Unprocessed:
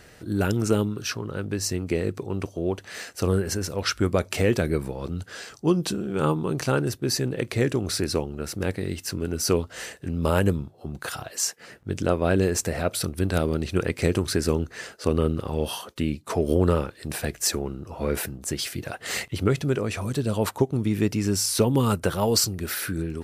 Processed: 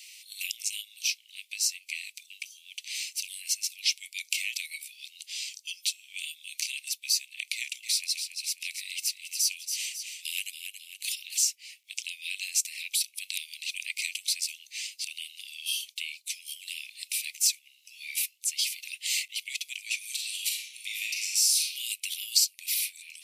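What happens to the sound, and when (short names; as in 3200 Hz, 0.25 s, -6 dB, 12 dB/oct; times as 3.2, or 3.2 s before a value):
7.55–11.44 tapped delay 0.279/0.544 s -10/-17.5 dB
19.97–21.72 reverb throw, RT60 0.87 s, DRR -1.5 dB
whole clip: steep high-pass 2200 Hz 96 dB/oct; compressor 1.5:1, threshold -44 dBFS; gain +8.5 dB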